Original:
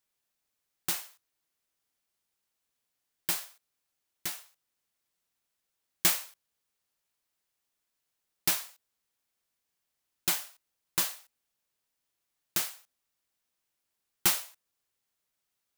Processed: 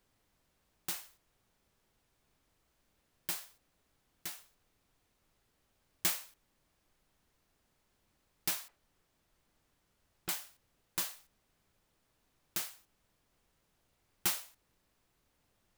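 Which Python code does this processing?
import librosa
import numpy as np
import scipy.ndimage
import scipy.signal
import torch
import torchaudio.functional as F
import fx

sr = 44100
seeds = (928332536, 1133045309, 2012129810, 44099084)

y = fx.lowpass(x, sr, hz=1900.0, slope=12, at=(8.68, 10.29))
y = fx.dmg_noise_colour(y, sr, seeds[0], colour='pink', level_db=-69.0)
y = y * librosa.db_to_amplitude(-7.0)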